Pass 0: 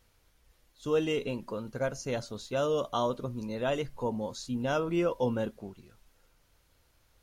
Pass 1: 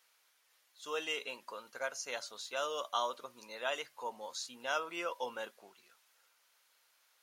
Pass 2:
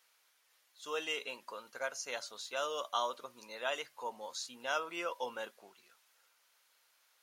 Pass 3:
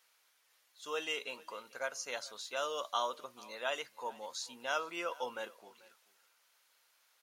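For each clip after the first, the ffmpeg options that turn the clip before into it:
ffmpeg -i in.wav -af "highpass=1000,volume=1dB" out.wav
ffmpeg -i in.wav -af anull out.wav
ffmpeg -i in.wav -af "aecho=1:1:439:0.0794" out.wav

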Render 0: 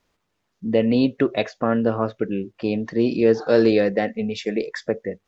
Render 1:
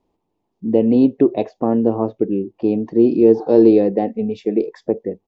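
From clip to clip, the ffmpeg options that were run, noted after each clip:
ffmpeg -i in.wav -af "firequalizer=gain_entry='entry(130,0);entry(340,9);entry(570,-1);entry(840,6);entry(1400,-17);entry(2600,-10);entry(5800,-13)':delay=0.05:min_phase=1" out.wav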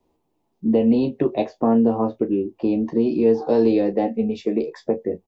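ffmpeg -i in.wav -filter_complex "[0:a]acrossover=split=160|680|1100[link_01][link_02][link_03][link_04];[link_02]acompressor=threshold=-20dB:ratio=6[link_05];[link_01][link_05][link_03][link_04]amix=inputs=4:normalize=0,crystalizer=i=0.5:c=0,aecho=1:1:13|35:0.562|0.237" out.wav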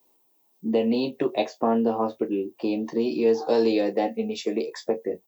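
ffmpeg -i in.wav -af "highpass=63,aemphasis=mode=production:type=riaa" out.wav

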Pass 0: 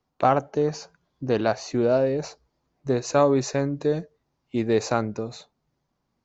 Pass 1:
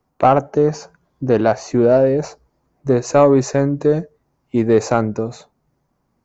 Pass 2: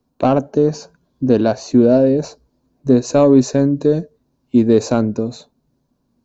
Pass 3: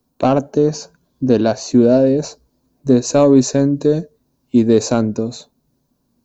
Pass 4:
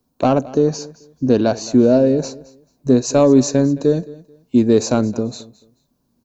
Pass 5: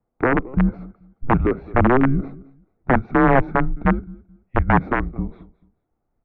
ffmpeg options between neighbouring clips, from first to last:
ffmpeg -i in.wav -af "equalizer=frequency=3700:width=0.98:gain=-10,acontrast=72,volume=2dB" out.wav
ffmpeg -i in.wav -af "equalizer=frequency=250:width_type=o:width=0.33:gain=9,equalizer=frequency=800:width_type=o:width=0.33:gain=-7,equalizer=frequency=1250:width_type=o:width=0.33:gain=-8,equalizer=frequency=2000:width_type=o:width=0.33:gain=-11,equalizer=frequency=4000:width_type=o:width=0.33:gain=7" out.wav
ffmpeg -i in.wav -af "crystalizer=i=1.5:c=0" out.wav
ffmpeg -i in.wav -af "aecho=1:1:218|436:0.1|0.023,volume=-1dB" out.wav
ffmpeg -i in.wav -af "aeval=exprs='(mod(1.78*val(0)+1,2)-1)/1.78':channel_layout=same,highpass=frequency=270:width_type=q:width=0.5412,highpass=frequency=270:width_type=q:width=1.307,lowpass=frequency=2200:width_type=q:width=0.5176,lowpass=frequency=2200:width_type=q:width=0.7071,lowpass=frequency=2200:width_type=q:width=1.932,afreqshift=-260,volume=-1dB" out.wav

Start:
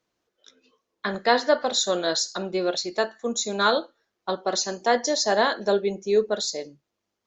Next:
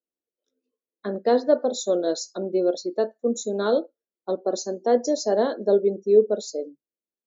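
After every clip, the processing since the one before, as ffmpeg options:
ffmpeg -i in.wav -af "afftdn=noise_reduction=20:noise_floor=-34,equalizer=frequency=125:width_type=o:width=1:gain=-10,equalizer=frequency=250:width_type=o:width=1:gain=9,equalizer=frequency=500:width_type=o:width=1:gain=8,equalizer=frequency=1000:width_type=o:width=1:gain=-7,equalizer=frequency=2000:width_type=o:width=1:gain=-10,equalizer=frequency=4000:width_type=o:width=1:gain=-6,volume=-3dB" out.wav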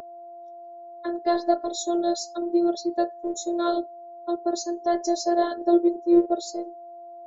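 ffmpeg -i in.wav -af "aeval=exprs='val(0)+0.0447*sin(2*PI*560*n/s)':channel_layout=same,afftfilt=real='hypot(re,im)*cos(PI*b)':imag='0':win_size=512:overlap=0.75,volume=3dB" out.wav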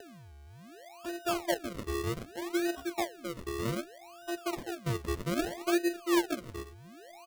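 ffmpeg -i in.wav -filter_complex "[0:a]acrossover=split=180[link_01][link_02];[link_01]aecho=1:1:542:0.398[link_03];[link_02]acrusher=samples=39:mix=1:aa=0.000001:lfo=1:lforange=39:lforate=0.64[link_04];[link_03][link_04]amix=inputs=2:normalize=0,volume=-9dB" out.wav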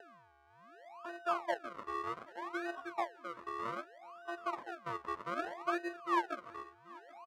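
ffmpeg -i in.wav -af "bandpass=frequency=1100:width_type=q:width=2.4:csg=0,aecho=1:1:783:0.0794,volume=5dB" out.wav

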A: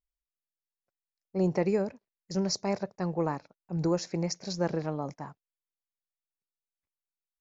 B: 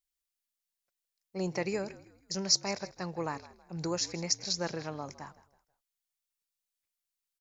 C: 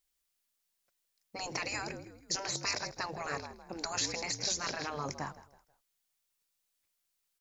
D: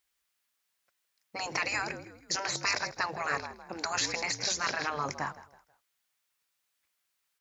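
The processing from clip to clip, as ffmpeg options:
ffmpeg -i in.wav -filter_complex "[0:a]tiltshelf=frequency=1400:gain=-8,asplit=4[link_01][link_02][link_03][link_04];[link_02]adelay=161,afreqshift=-52,volume=-18dB[link_05];[link_03]adelay=322,afreqshift=-104,volume=-26.6dB[link_06];[link_04]adelay=483,afreqshift=-156,volume=-35.3dB[link_07];[link_01][link_05][link_06][link_07]amix=inputs=4:normalize=0" out.wav
ffmpeg -i in.wav -af "afftfilt=real='re*lt(hypot(re,im),0.0501)':imag='im*lt(hypot(re,im),0.0501)':win_size=1024:overlap=0.75,volume=7dB" out.wav
ffmpeg -i in.wav -af "highpass=48,equalizer=frequency=1600:width=0.59:gain=8" out.wav

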